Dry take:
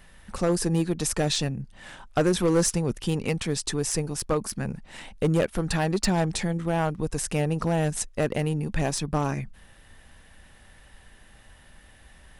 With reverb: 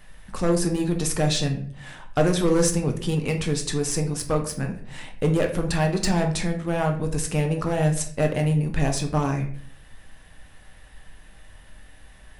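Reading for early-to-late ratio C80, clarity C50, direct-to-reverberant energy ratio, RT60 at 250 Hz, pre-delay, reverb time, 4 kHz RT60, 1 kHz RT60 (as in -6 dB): 14.0 dB, 9.5 dB, 3.0 dB, 0.75 s, 6 ms, 0.55 s, 0.40 s, 0.45 s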